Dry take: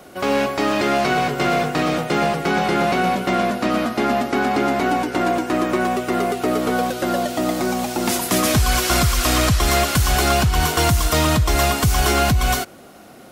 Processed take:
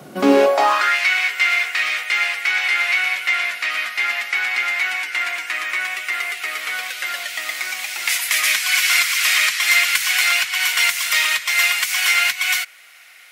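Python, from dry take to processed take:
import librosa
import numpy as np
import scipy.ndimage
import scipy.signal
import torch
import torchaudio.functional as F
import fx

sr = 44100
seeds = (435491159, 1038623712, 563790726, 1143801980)

y = fx.filter_sweep_highpass(x, sr, from_hz=130.0, to_hz=2100.0, start_s=0.02, end_s=0.97, q=3.9)
y = y * 10.0 ** (1.0 / 20.0)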